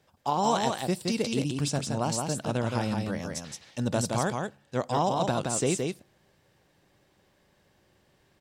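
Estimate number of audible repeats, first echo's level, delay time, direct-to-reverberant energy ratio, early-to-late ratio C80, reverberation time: 1, −4.0 dB, 170 ms, no reverb audible, no reverb audible, no reverb audible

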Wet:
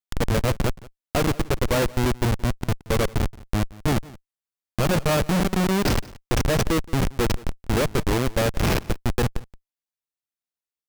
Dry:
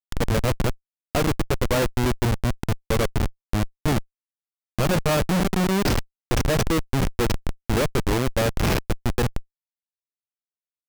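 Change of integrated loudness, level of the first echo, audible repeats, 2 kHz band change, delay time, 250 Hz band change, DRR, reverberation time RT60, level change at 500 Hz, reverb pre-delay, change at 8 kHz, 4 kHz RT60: 0.0 dB, −21.0 dB, 1, 0.0 dB, 174 ms, 0.0 dB, no reverb audible, no reverb audible, 0.0 dB, no reverb audible, 0.0 dB, no reverb audible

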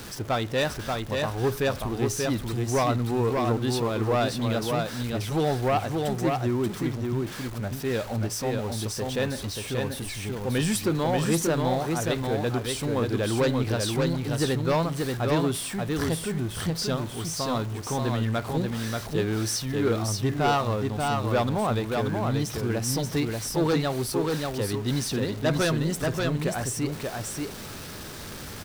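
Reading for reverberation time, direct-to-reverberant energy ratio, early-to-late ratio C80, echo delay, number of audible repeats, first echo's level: no reverb audible, no reverb audible, no reverb audible, 584 ms, 1, −3.5 dB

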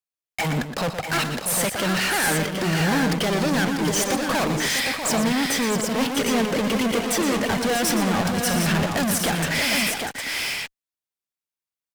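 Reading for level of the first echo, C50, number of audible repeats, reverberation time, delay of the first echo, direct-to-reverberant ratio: −9.5 dB, no reverb audible, 4, no reverb audible, 119 ms, no reverb audible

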